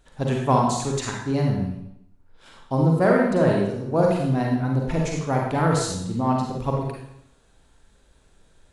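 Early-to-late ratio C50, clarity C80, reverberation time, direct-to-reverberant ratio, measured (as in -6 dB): 1.0 dB, 4.5 dB, 0.80 s, -1.5 dB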